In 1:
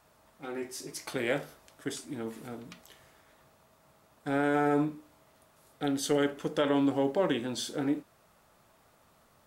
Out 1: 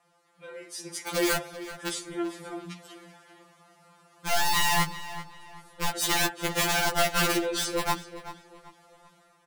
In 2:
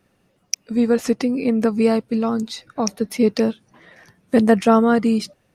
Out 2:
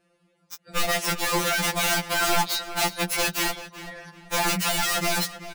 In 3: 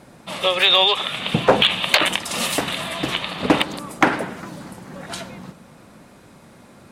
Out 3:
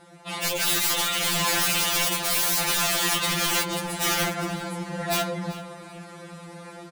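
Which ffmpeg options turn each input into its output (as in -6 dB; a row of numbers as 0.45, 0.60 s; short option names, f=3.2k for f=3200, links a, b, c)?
-filter_complex "[0:a]highpass=f=57:p=1,highshelf=f=6.2k:g=5,adynamicsmooth=sensitivity=3:basefreq=6k,alimiter=limit=-11.5dB:level=0:latency=1:release=170,dynaudnorm=f=570:g=3:m=9dB,equalizer=f=100:t=o:w=0.67:g=-8,equalizer=f=250:t=o:w=0.67:g=-4,equalizer=f=10k:t=o:w=0.67:g=7,aeval=exprs='(mod(6.31*val(0)+1,2)-1)/6.31':c=same,asplit=2[a][b];[b]adelay=385,lowpass=f=4k:p=1,volume=-13.5dB,asplit=2[c][d];[d]adelay=385,lowpass=f=4k:p=1,volume=0.35,asplit=2[e][f];[f]adelay=385,lowpass=f=4k:p=1,volume=0.35[g];[c][e][g]amix=inputs=3:normalize=0[h];[a][h]amix=inputs=2:normalize=0,afftfilt=real='re*2.83*eq(mod(b,8),0)':imag='im*2.83*eq(mod(b,8),0)':win_size=2048:overlap=0.75"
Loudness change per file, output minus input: +4.0, -4.5, -4.5 LU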